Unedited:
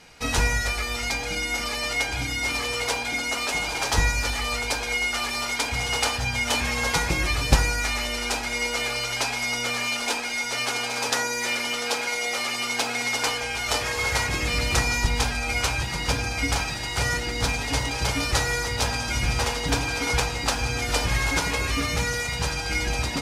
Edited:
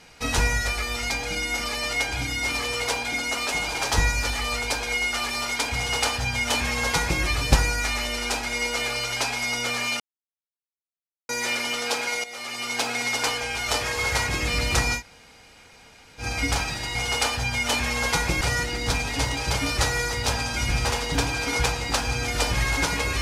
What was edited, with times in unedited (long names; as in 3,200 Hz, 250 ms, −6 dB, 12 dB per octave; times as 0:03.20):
0:05.76–0:07.22: duplicate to 0:16.95
0:10.00–0:11.29: silence
0:12.24–0:12.84: fade in, from −14.5 dB
0:14.98–0:16.22: fill with room tone, crossfade 0.10 s